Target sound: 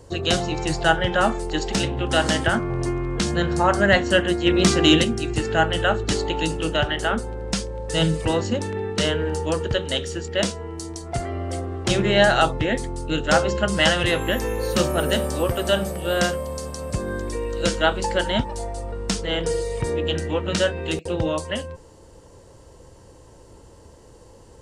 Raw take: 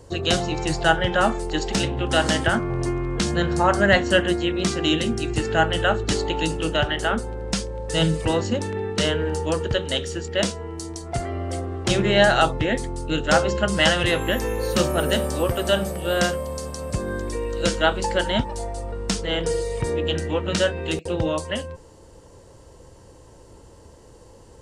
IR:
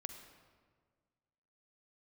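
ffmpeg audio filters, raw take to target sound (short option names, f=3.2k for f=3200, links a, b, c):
-filter_complex "[0:a]asplit=3[a][b][c];[a]afade=t=out:st=4.45:d=0.02[d];[b]acontrast=61,afade=t=in:st=4.45:d=0.02,afade=t=out:st=5.03:d=0.02[e];[c]afade=t=in:st=5.03:d=0.02[f];[d][e][f]amix=inputs=3:normalize=0"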